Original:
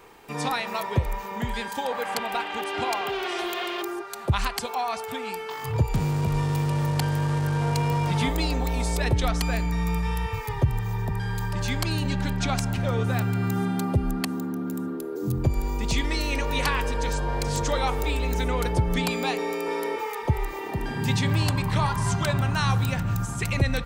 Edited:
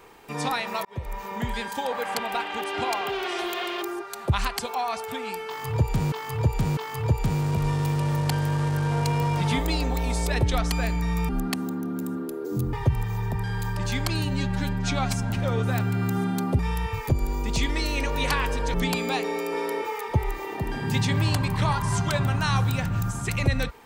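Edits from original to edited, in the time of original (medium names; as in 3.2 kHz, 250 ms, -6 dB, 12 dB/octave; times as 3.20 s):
0.85–1.28 s: fade in
5.47–6.12 s: loop, 3 plays
9.99–10.49 s: swap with 14.00–15.44 s
12.01–12.71 s: stretch 1.5×
17.09–18.88 s: delete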